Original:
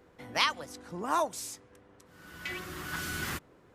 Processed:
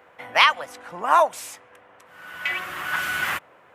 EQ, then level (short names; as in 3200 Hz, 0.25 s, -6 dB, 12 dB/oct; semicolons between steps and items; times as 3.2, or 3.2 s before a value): HPF 88 Hz; band shelf 1300 Hz +15 dB 2.9 oct; high shelf 6100 Hz +8.5 dB; -3.0 dB